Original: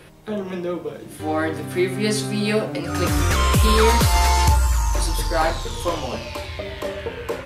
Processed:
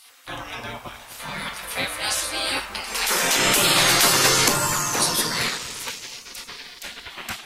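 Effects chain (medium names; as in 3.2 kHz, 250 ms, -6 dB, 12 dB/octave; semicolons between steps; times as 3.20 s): 5.57–7.10 s: ring modulator 710 Hz; spectral gate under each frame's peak -20 dB weak; feedback echo behind a low-pass 248 ms, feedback 53%, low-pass 1.1 kHz, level -15 dB; trim +8 dB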